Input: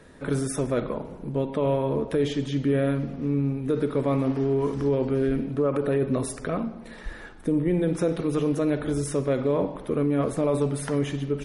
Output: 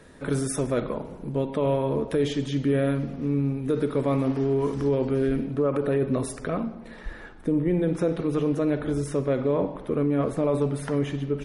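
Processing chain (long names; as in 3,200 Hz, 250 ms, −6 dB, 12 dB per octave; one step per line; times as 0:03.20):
high-shelf EQ 4,600 Hz +2.5 dB, from 0:05.47 −2.5 dB, from 0:06.75 −8 dB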